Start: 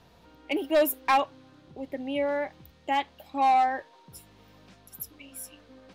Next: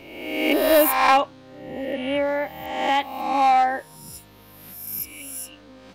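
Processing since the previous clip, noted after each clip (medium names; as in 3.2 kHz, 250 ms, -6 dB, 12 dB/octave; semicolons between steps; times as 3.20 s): reverse spectral sustain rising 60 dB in 1.10 s; trim +4 dB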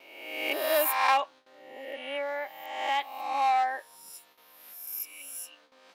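high-pass 650 Hz 12 dB/octave; gate with hold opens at -43 dBFS; trim -6 dB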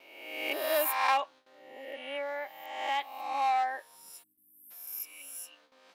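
spectral selection erased 4.23–4.71 s, 370–7700 Hz; trim -3 dB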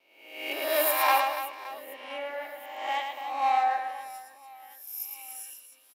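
reverse bouncing-ball echo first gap 110 ms, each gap 1.6×, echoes 5; three bands expanded up and down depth 40%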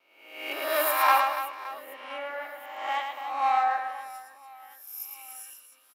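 peaking EQ 1.3 kHz +10.5 dB 0.65 oct; trim -2 dB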